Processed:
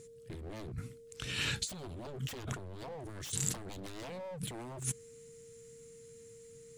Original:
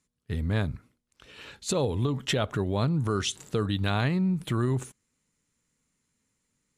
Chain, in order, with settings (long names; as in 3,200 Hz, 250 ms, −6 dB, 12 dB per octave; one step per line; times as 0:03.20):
steady tone 460 Hz −55 dBFS
octave-band graphic EQ 125/500/1,000/8,000 Hz +10/−9/−6/+7 dB
0:03.47–0:04.05: transient designer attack +5 dB, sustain +9 dB
wave folding −25.5 dBFS
compressor whose output falls as the input rises −43 dBFS, ratio −1
level +1.5 dB